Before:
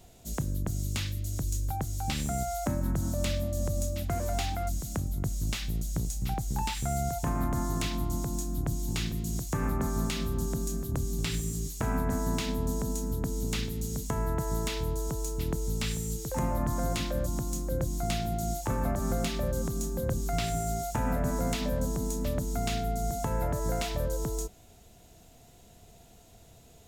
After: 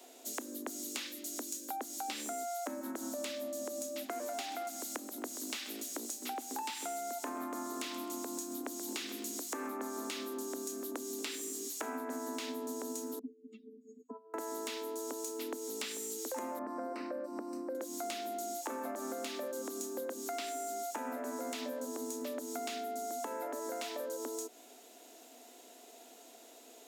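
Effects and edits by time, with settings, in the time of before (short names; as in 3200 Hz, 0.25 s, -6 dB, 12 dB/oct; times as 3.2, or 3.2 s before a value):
4.26–9.75 lo-fi delay 0.131 s, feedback 35%, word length 9-bit, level -13.5 dB
13.19–14.34 spectral contrast raised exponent 3.4
16.59–17.75 running mean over 13 samples
whole clip: steep high-pass 240 Hz 96 dB/oct; compressor, threshold -40 dBFS; gain +3 dB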